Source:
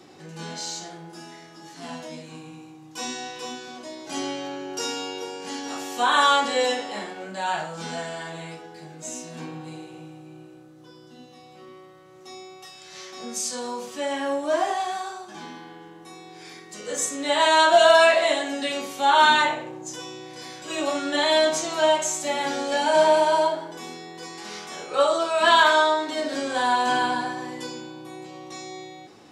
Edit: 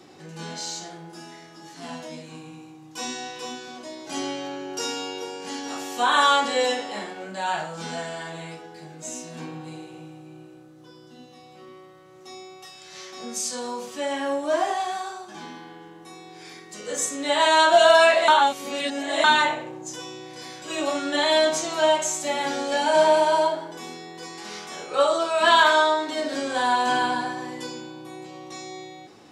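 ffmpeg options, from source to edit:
-filter_complex "[0:a]asplit=3[s0][s1][s2];[s0]atrim=end=18.282[s3];[s1]atrim=start=18.278:end=19.242,asetpts=PTS-STARTPTS,areverse[s4];[s2]atrim=start=19.238[s5];[s3][s4]acrossfade=d=0.004:c1=hsin:c2=hsin[s6];[s6][s5]acrossfade=d=0.004:c1=hsin:c2=hsin"

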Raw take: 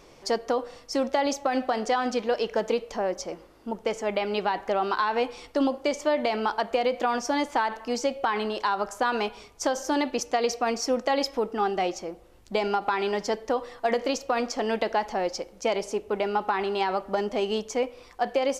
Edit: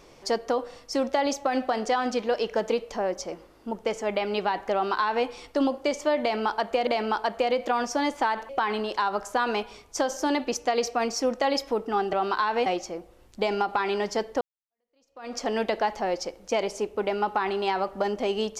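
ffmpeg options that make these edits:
-filter_complex "[0:a]asplit=6[s0][s1][s2][s3][s4][s5];[s0]atrim=end=6.872[s6];[s1]atrim=start=6.208:end=7.832[s7];[s2]atrim=start=8.148:end=11.792[s8];[s3]atrim=start=4.728:end=5.262[s9];[s4]atrim=start=11.788:end=13.54,asetpts=PTS-STARTPTS,afade=t=out:st=1.748:d=0.004:c=hsin[s10];[s5]atrim=start=13.54,asetpts=PTS-STARTPTS,afade=t=in:d=0.96:c=exp[s11];[s6][s7]acrossfade=d=0.004:c1=hsin:c2=hsin[s12];[s12][s8]acrossfade=d=0.004:c1=hsin:c2=hsin[s13];[s13][s9]acrossfade=d=0.004:c1=hsin:c2=hsin[s14];[s10][s11]concat=n=2:v=0:a=1[s15];[s14][s15]acrossfade=d=0.004:c1=hsin:c2=hsin"

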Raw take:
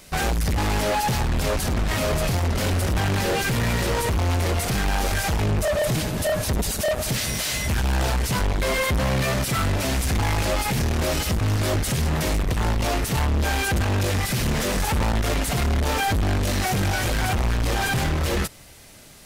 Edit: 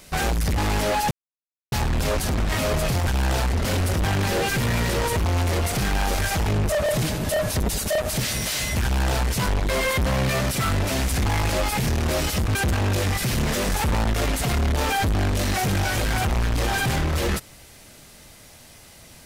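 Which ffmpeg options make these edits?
-filter_complex "[0:a]asplit=5[s0][s1][s2][s3][s4];[s0]atrim=end=1.11,asetpts=PTS-STARTPTS,afade=t=out:st=1.106:d=0.004:c=hsin,apad=pad_dur=0.61[s5];[s1]atrim=start=1.11:end=2.462,asetpts=PTS-STARTPTS,afade=t=in:d=0.004:c=hsin[s6];[s2]atrim=start=7.768:end=8.232[s7];[s3]atrim=start=2.458:end=11.482[s8];[s4]atrim=start=13.628[s9];[s5][s6]concat=n=2:v=0:a=1[s10];[s10][s7]acrossfade=d=0.004:c1=hsin:c2=hsin[s11];[s11][s8]acrossfade=d=0.004:c1=hsin:c2=hsin[s12];[s12][s9]acrossfade=d=0.004:c1=hsin:c2=hsin"

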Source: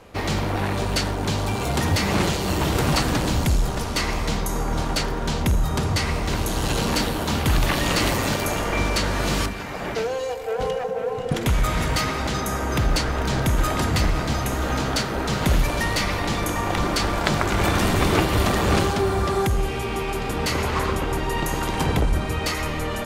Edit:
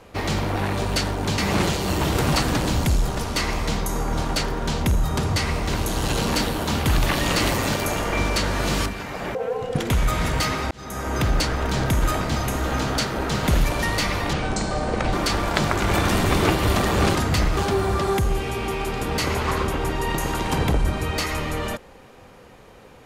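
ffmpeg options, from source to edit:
-filter_complex "[0:a]asplit=9[s0][s1][s2][s3][s4][s5][s6][s7][s8];[s0]atrim=end=1.382[s9];[s1]atrim=start=1.978:end=9.952[s10];[s2]atrim=start=10.908:end=12.27,asetpts=PTS-STARTPTS,afade=t=out:st=1.358:d=0.004:c=hsin[s11];[s3]atrim=start=12.27:end=13.772,asetpts=PTS-STARTPTS,afade=t=in:d=0.43[s12];[s4]atrim=start=14.188:end=16.314[s13];[s5]atrim=start=16.31:end=16.83,asetpts=PTS-STARTPTS,asetrate=28665,aresample=44100[s14];[s6]atrim=start=16.826:end=18.852[s15];[s7]atrim=start=13.768:end=14.192[s16];[s8]atrim=start=18.848[s17];[s9][s10]acrossfade=d=0.004:c1=hsin:c2=hsin[s18];[s11][s12]concat=n=2:v=0:a=1[s19];[s18][s19]acrossfade=d=0.004:c1=hsin:c2=hsin[s20];[s20][s13]acrossfade=d=0.004:c1=hsin:c2=hsin[s21];[s21][s14]acrossfade=d=0.004:c1=hsin:c2=hsin[s22];[s22][s15]acrossfade=d=0.004:c1=hsin:c2=hsin[s23];[s23][s16]acrossfade=d=0.004:c1=hsin:c2=hsin[s24];[s24][s17]acrossfade=d=0.004:c1=hsin:c2=hsin"

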